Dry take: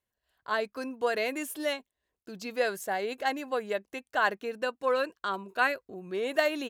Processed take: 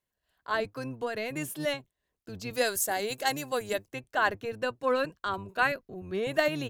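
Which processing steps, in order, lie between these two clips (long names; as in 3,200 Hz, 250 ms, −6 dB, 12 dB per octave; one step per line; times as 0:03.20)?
sub-octave generator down 1 octave, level −2 dB
0:00.74–0:01.36: downward compressor 2 to 1, threshold −33 dBFS, peak gain reduction 6 dB
0:02.53–0:03.88: bass and treble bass −4 dB, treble +14 dB
0:05.72–0:06.23: notch filter 7,800 Hz, Q 5.7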